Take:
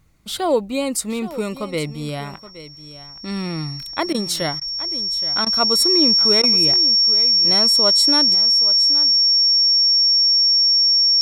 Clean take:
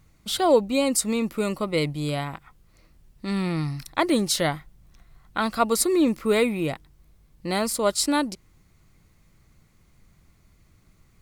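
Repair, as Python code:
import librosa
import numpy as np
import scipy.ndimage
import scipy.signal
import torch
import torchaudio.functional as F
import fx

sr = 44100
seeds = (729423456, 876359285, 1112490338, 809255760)

y = fx.notch(x, sr, hz=5500.0, q=30.0)
y = fx.fix_interpolate(y, sr, at_s=(4.13, 4.6, 5.45, 6.42), length_ms=13.0)
y = fx.fix_echo_inverse(y, sr, delay_ms=822, level_db=-15.0)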